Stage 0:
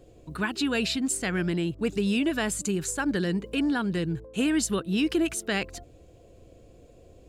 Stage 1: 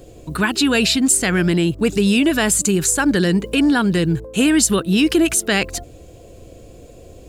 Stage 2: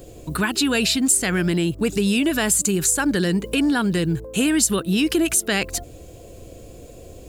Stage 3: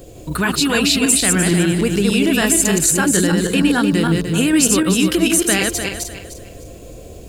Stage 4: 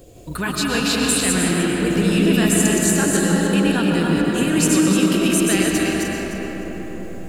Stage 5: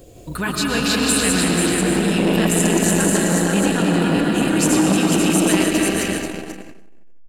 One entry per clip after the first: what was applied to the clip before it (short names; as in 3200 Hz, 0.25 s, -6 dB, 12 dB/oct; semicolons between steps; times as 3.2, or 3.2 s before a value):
high shelf 6100 Hz +8 dB; in parallel at -1.5 dB: limiter -21.5 dBFS, peak gain reduction 11 dB; on the sum: gain +6 dB
high shelf 9300 Hz +8 dB; compressor 1.5:1, threshold -24 dBFS, peak gain reduction 6 dB
regenerating reverse delay 0.151 s, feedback 52%, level -2.5 dB; gain +2.5 dB
reverb RT60 5.4 s, pre-delay 80 ms, DRR -1.5 dB; gain -6 dB
echo 0.487 s -4.5 dB; core saturation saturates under 650 Hz; gain +1 dB